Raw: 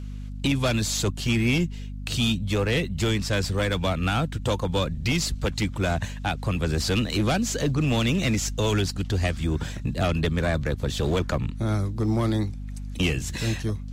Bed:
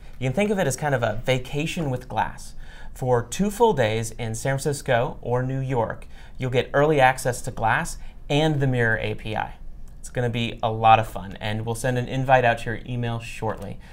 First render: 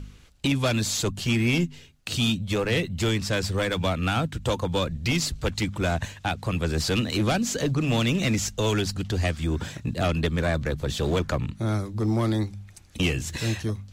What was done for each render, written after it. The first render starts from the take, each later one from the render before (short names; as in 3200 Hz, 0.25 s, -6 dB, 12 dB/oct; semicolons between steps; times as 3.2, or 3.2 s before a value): de-hum 50 Hz, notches 5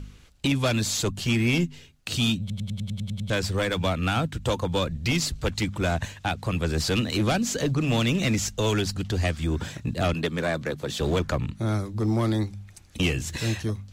2.4 stutter in place 0.10 s, 9 plays; 10.14–11.01 HPF 170 Hz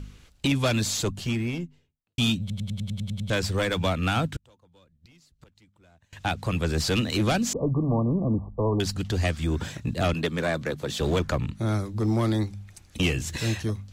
0.81–2.18 studio fade out; 4.36–6.13 flipped gate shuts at -24 dBFS, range -33 dB; 7.53–8.8 brick-wall FIR low-pass 1200 Hz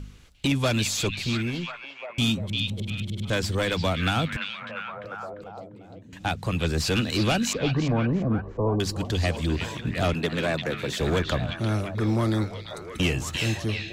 delay with a stepping band-pass 0.347 s, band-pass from 3100 Hz, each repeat -0.7 oct, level -1 dB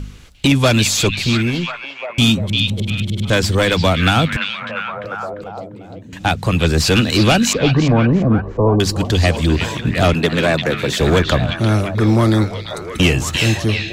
gain +10.5 dB